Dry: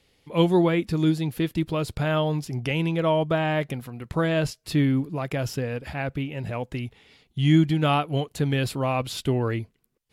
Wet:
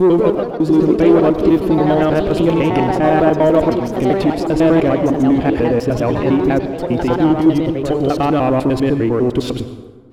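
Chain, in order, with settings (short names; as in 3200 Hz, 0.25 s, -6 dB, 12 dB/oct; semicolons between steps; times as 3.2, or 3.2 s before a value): slices in reverse order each 0.1 s, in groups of 6; tilt -4 dB/oct; in parallel at -2 dB: negative-ratio compressor -20 dBFS; on the sum: limiter -6.5 dBFS, peak gain reduction 7 dB; resonant low shelf 210 Hz -12 dB, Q 1.5; sample leveller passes 1; echoes that change speed 0.181 s, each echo +3 st, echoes 2, each echo -6 dB; plate-style reverb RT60 1.5 s, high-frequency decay 0.5×, pre-delay 80 ms, DRR 10.5 dB; gain +1 dB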